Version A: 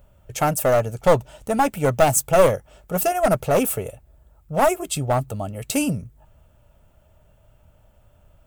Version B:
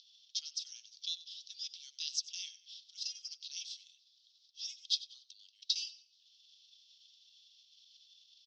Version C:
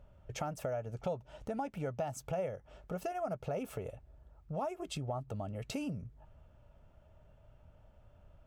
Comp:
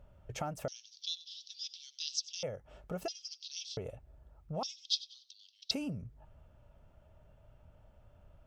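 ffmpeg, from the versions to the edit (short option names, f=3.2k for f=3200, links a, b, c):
-filter_complex "[1:a]asplit=3[a][b][c];[2:a]asplit=4[d][e][f][g];[d]atrim=end=0.682[h];[a]atrim=start=0.678:end=2.432[i];[e]atrim=start=2.428:end=3.082[j];[b]atrim=start=3.078:end=3.772[k];[f]atrim=start=3.768:end=4.632[l];[c]atrim=start=4.628:end=5.712[m];[g]atrim=start=5.708[n];[h][i]acrossfade=d=0.004:c1=hsin:c2=hsin[o];[o][j]acrossfade=d=0.004:c1=hsin:c2=hsin[p];[p][k]acrossfade=d=0.004:c1=hsin:c2=hsin[q];[q][l]acrossfade=d=0.004:c1=hsin:c2=hsin[r];[r][m]acrossfade=d=0.004:c1=hsin:c2=hsin[s];[s][n]acrossfade=d=0.004:c1=hsin:c2=hsin"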